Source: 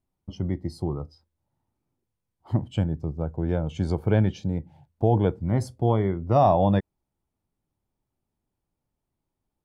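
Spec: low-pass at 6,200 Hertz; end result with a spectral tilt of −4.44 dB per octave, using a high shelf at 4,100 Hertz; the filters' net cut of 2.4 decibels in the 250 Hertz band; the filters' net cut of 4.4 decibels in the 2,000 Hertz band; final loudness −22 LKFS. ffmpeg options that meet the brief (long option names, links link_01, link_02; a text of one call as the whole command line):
ffmpeg -i in.wav -af "lowpass=6200,equalizer=frequency=250:width_type=o:gain=-3.5,equalizer=frequency=2000:width_type=o:gain=-4.5,highshelf=frequency=4100:gain=-6.5,volume=4.5dB" out.wav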